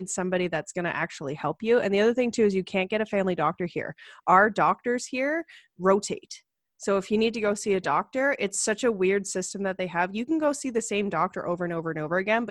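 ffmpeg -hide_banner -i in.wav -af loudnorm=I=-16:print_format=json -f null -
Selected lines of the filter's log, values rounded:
"input_i" : "-26.2",
"input_tp" : "-4.5",
"input_lra" : "2.4",
"input_thresh" : "-36.4",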